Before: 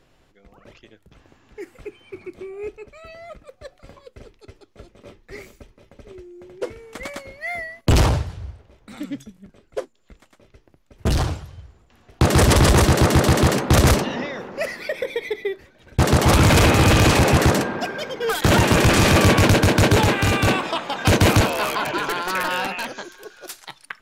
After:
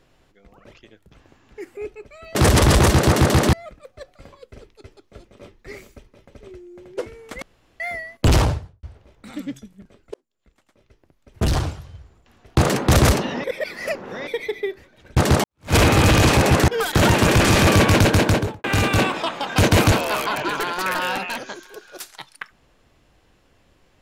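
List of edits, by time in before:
1.77–2.59 cut
7.06–7.44 room tone
8.06–8.47 studio fade out
9.78–11.06 fade in
12.29–13.47 move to 3.17
14.26–15.09 reverse
16.26–16.56 fade in exponential
17.5–18.17 cut
19.7–20.13 studio fade out

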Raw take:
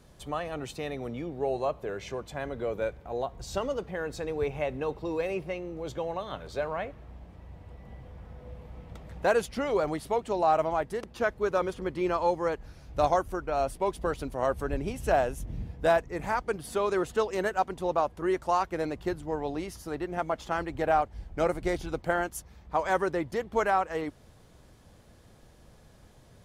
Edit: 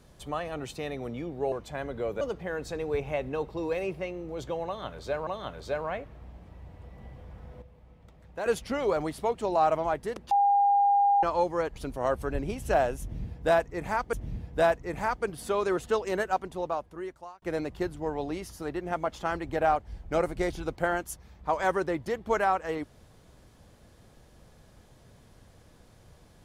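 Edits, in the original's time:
1.52–2.14 cut
2.83–3.69 cut
6.14–6.75 loop, 2 plays
8.49–9.33 gain -10 dB
11.18–12.1 bleep 806 Hz -19 dBFS
12.63–14.14 cut
15.39–16.51 loop, 2 plays
17.49–18.68 fade out

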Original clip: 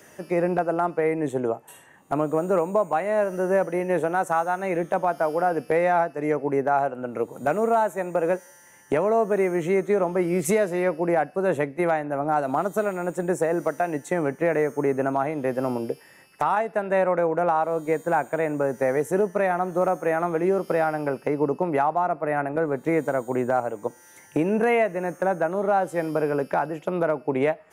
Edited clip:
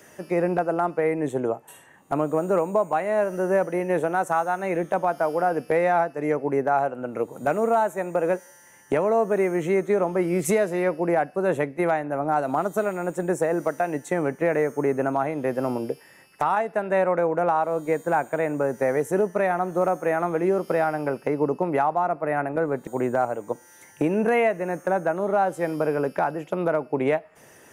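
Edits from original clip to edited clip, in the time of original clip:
22.87–23.22 cut

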